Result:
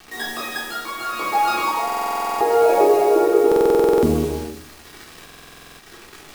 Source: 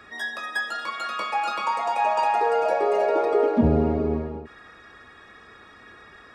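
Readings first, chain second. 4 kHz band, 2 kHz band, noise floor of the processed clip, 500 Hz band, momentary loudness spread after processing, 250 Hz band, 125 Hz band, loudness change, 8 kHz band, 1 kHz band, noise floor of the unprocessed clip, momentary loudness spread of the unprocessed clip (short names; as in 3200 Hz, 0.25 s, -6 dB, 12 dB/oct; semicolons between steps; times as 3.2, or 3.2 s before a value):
+5.5 dB, +1.0 dB, -44 dBFS, +7.0 dB, 12 LU, +3.0 dB, -2.0 dB, +5.0 dB, n/a, +3.5 dB, -49 dBFS, 9 LU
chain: bell 350 Hz +9 dB 0.45 oct; in parallel at -3 dB: compressor 6:1, threshold -31 dBFS, peak gain reduction 17 dB; on the sum: requantised 6-bit, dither none; tremolo triangle 0.83 Hz, depth 50%; crossover distortion -46.5 dBFS; thin delay 0.162 s, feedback 64%, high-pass 4300 Hz, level -5 dB; shoebox room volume 740 m³, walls furnished, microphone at 3.6 m; stuck buffer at 1.85/3.47/5.24, samples 2048, times 11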